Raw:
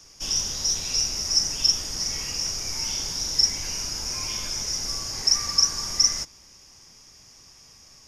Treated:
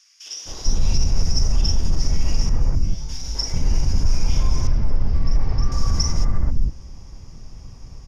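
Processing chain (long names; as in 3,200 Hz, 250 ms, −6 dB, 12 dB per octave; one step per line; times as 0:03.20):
spectral tilt −4.5 dB per octave
brickwall limiter −14.5 dBFS, peak gain reduction 9.5 dB
0:02.49–0:03.09: tuned comb filter 51 Hz, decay 0.35 s, harmonics odd, mix 90%
0:04.67–0:05.72: high-frequency loss of the air 300 metres
three-band delay without the direct sound highs, mids, lows 260/450 ms, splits 360/1,800 Hz
level +6 dB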